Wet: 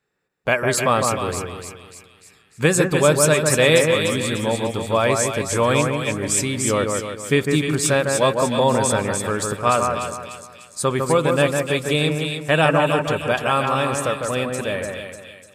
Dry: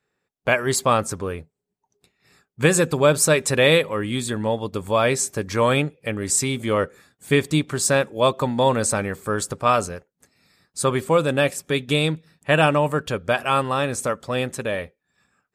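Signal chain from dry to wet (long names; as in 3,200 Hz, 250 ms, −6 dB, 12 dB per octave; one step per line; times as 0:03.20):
0:03.53–0:04.06: bit-depth reduction 12 bits, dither none
echo with a time of its own for lows and highs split 2,200 Hz, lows 154 ms, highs 297 ms, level −4 dB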